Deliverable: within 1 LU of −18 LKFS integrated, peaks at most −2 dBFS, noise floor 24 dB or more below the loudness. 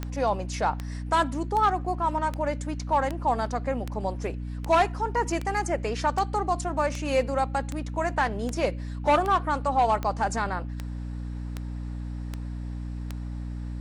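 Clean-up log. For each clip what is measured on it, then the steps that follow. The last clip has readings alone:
number of clicks 18; mains hum 60 Hz; hum harmonics up to 300 Hz; level of the hum −31 dBFS; integrated loudness −27.5 LKFS; sample peak −12.0 dBFS; target loudness −18.0 LKFS
→ click removal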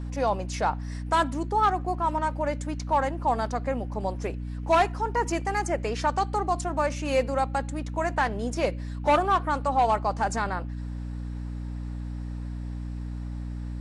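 number of clicks 0; mains hum 60 Hz; hum harmonics up to 300 Hz; level of the hum −31 dBFS
→ hum removal 60 Hz, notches 5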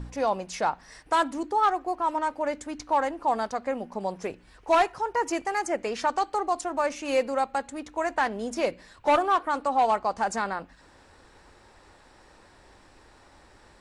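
mains hum none found; integrated loudness −27.5 LKFS; sample peak −13.5 dBFS; target loudness −18.0 LKFS
→ level +9.5 dB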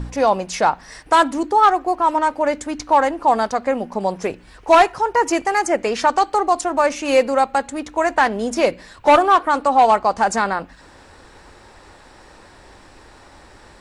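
integrated loudness −18.0 LKFS; sample peak −4.0 dBFS; background noise floor −46 dBFS

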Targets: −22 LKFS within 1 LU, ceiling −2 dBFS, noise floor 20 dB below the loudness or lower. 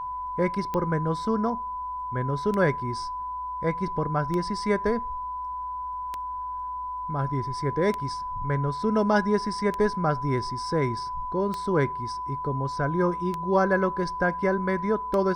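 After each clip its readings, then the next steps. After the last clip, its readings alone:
number of clicks 9; interfering tone 1,000 Hz; level of the tone −30 dBFS; integrated loudness −27.0 LKFS; sample peak −9.5 dBFS; target loudness −22.0 LKFS
→ click removal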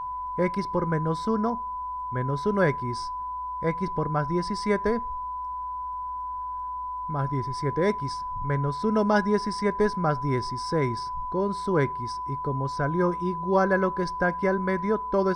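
number of clicks 0; interfering tone 1,000 Hz; level of the tone −30 dBFS
→ notch filter 1,000 Hz, Q 30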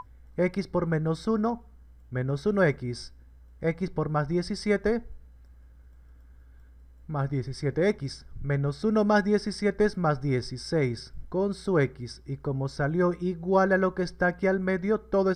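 interfering tone none found; integrated loudness −27.5 LKFS; sample peak −10.5 dBFS; target loudness −22.0 LKFS
→ level +5.5 dB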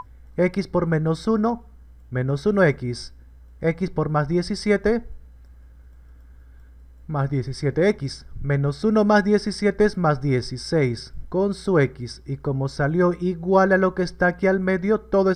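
integrated loudness −22.0 LKFS; sample peak −5.0 dBFS; background noise floor −47 dBFS

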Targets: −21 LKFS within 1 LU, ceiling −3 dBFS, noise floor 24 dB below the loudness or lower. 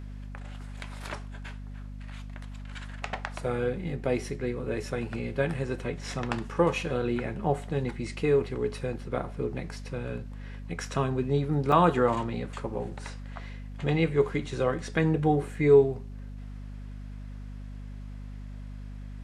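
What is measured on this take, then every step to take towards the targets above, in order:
number of dropouts 2; longest dropout 3.4 ms; mains hum 50 Hz; hum harmonics up to 250 Hz; level of the hum −38 dBFS; integrated loudness −28.5 LKFS; sample peak −8.0 dBFS; target loudness −21.0 LKFS
→ repair the gap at 0:04.06/0:11.72, 3.4 ms
hum removal 50 Hz, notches 5
level +7.5 dB
brickwall limiter −3 dBFS

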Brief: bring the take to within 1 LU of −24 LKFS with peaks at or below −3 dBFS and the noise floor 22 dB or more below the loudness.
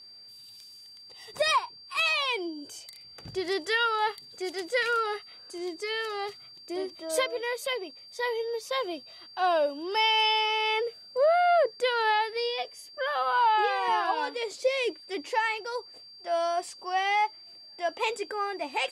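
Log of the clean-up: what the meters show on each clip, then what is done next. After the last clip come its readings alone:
interfering tone 4,700 Hz; level of the tone −47 dBFS; integrated loudness −28.0 LKFS; sample peak −16.0 dBFS; target loudness −24.0 LKFS
→ notch filter 4,700 Hz, Q 30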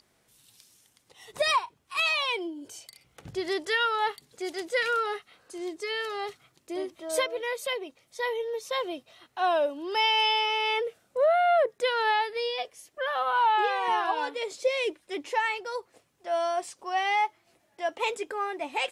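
interfering tone none found; integrated loudness −28.0 LKFS; sample peak −16.0 dBFS; target loudness −24.0 LKFS
→ level +4 dB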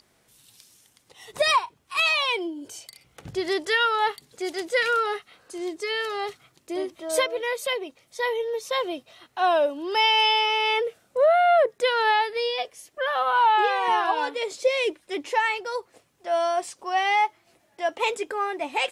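integrated loudness −24.0 LKFS; sample peak −12.0 dBFS; background noise floor −65 dBFS

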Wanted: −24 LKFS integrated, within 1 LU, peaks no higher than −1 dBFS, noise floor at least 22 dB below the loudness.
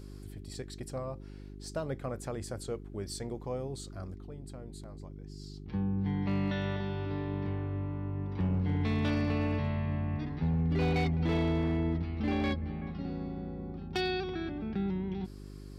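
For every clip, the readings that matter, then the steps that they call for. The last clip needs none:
share of clipped samples 0.9%; peaks flattened at −24.0 dBFS; mains hum 50 Hz; hum harmonics up to 400 Hz; level of the hum −44 dBFS; integrated loudness −34.0 LKFS; sample peak −24.0 dBFS; target loudness −24.0 LKFS
→ clipped peaks rebuilt −24 dBFS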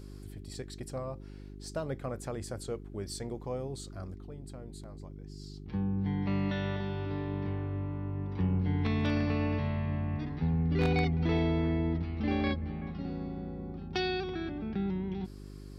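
share of clipped samples 0.0%; mains hum 50 Hz; hum harmonics up to 400 Hz; level of the hum −43 dBFS
→ hum removal 50 Hz, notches 8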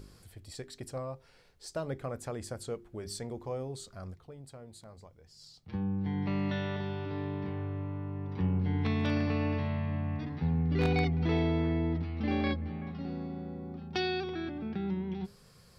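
mains hum none found; integrated loudness −34.0 LKFS; sample peak −14.5 dBFS; target loudness −24.0 LKFS
→ level +10 dB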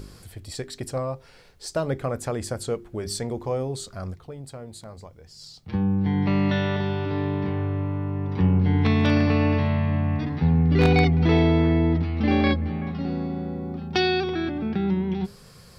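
integrated loudness −24.0 LKFS; sample peak −4.5 dBFS; background noise floor −50 dBFS

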